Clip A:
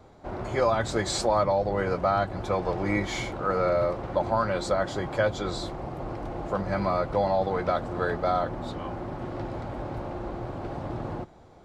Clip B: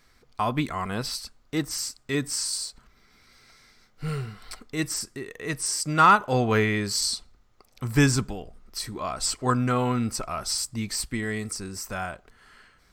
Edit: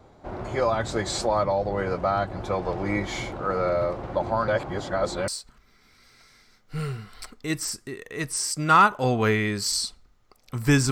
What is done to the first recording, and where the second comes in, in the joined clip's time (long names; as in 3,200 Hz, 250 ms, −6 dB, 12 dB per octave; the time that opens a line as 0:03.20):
clip A
0:04.48–0:05.28: reverse
0:05.28: continue with clip B from 0:02.57